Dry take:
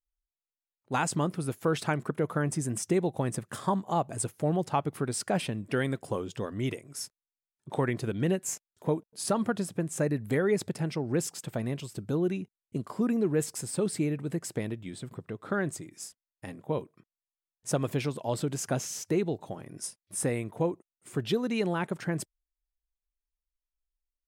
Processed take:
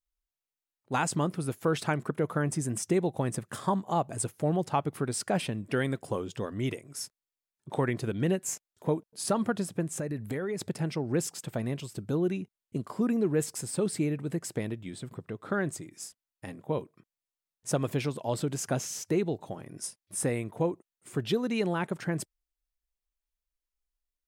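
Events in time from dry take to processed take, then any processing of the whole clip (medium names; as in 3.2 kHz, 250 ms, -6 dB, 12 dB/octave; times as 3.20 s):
9.96–10.61 s: compression, threshold -29 dBFS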